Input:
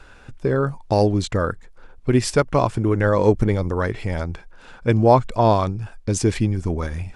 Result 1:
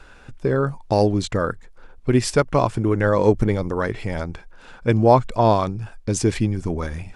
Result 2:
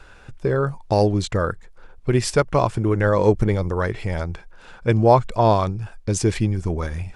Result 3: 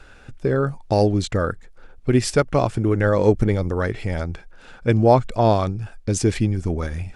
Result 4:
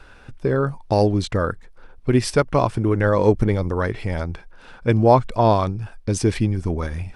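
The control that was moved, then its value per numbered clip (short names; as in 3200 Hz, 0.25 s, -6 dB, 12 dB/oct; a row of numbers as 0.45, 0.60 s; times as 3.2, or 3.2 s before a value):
bell, frequency: 89, 260, 1000, 7100 Hz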